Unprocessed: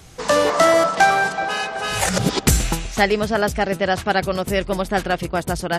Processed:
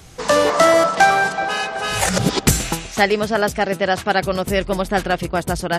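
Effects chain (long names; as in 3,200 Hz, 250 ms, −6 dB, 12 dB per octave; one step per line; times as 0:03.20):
0:02.51–0:04.24: high-pass filter 140 Hz 6 dB per octave
level +1.5 dB
AAC 192 kbit/s 48,000 Hz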